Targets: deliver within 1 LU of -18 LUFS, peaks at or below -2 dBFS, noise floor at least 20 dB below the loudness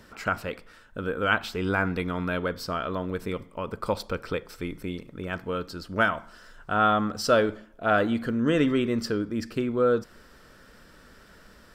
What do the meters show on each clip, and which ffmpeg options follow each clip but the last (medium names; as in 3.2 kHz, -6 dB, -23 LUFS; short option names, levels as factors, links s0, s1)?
loudness -27.5 LUFS; peak level -7.0 dBFS; loudness target -18.0 LUFS
-> -af "volume=2.99,alimiter=limit=0.794:level=0:latency=1"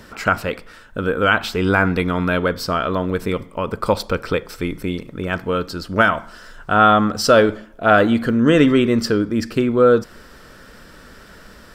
loudness -18.0 LUFS; peak level -2.0 dBFS; noise floor -44 dBFS